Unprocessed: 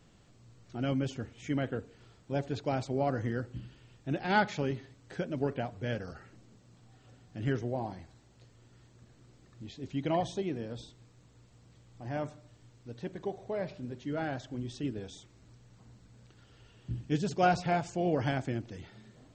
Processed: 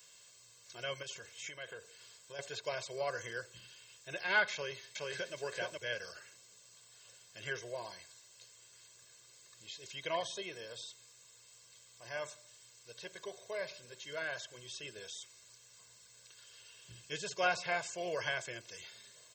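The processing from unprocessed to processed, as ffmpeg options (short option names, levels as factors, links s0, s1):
-filter_complex "[0:a]asettb=1/sr,asplit=3[s0][s1][s2];[s0]atrim=end=1.024[s3];[s1]atrim=start=1.02:end=2.39,asetpts=PTS-STARTPTS,afade=t=in:d=0.004:c=qsin,afade=t=out:st=1.366:d=0.004:c=qsin,acompressor=threshold=0.02:ratio=10:attack=3.2:release=140:knee=1:detection=peak[s4];[s2]atrim=start=2.386[s5];[s3][s4]acrossfade=d=0.004:c1=hsin:c2=qsin[s6];[s6][s5]acrossfade=d=0.004:c1=qsin:c2=hsin,asplit=2[s7][s8];[s8]afade=t=in:st=4.53:d=0.01,afade=t=out:st=5.35:d=0.01,aecho=0:1:420|840:0.891251|0.0891251[s9];[s7][s9]amix=inputs=2:normalize=0,acrossover=split=2900[s10][s11];[s11]acompressor=threshold=0.00141:ratio=4:attack=1:release=60[s12];[s10][s12]amix=inputs=2:normalize=0,aderivative,aecho=1:1:1.9:0.98,volume=3.98"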